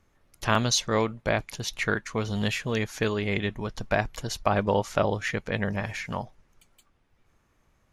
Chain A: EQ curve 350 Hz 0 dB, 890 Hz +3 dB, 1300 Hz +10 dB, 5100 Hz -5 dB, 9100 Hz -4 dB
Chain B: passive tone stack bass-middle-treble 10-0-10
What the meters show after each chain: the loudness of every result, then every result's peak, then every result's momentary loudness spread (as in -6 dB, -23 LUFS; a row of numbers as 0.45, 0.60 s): -25.0, -35.0 LUFS; -2.5, -12.0 dBFS; 9, 13 LU